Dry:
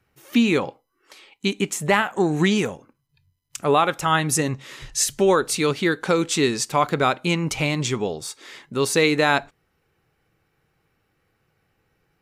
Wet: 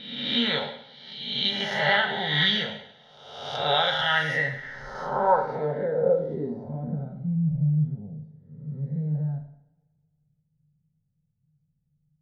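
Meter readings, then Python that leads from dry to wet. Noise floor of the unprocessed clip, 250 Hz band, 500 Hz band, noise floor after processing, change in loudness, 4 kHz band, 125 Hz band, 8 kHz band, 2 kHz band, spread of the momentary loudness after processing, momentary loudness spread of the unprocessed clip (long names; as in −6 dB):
−71 dBFS, −8.5 dB, −6.0 dB, −74 dBFS, −4.0 dB, +2.5 dB, 0.0 dB, below −25 dB, −2.0 dB, 16 LU, 10 LU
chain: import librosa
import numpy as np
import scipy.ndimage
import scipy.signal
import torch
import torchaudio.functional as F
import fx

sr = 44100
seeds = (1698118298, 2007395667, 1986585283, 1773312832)

y = fx.spec_swells(x, sr, rise_s=1.12)
y = fx.fixed_phaser(y, sr, hz=1700.0, stages=8)
y = fx.filter_sweep_lowpass(y, sr, from_hz=3400.0, to_hz=160.0, start_s=3.9, end_s=7.25, q=4.2)
y = fx.low_shelf(y, sr, hz=250.0, db=-4.5)
y = fx.rev_double_slope(y, sr, seeds[0], early_s=0.68, late_s=2.0, knee_db=-23, drr_db=2.5)
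y = y * 10.0 ** (-6.5 / 20.0)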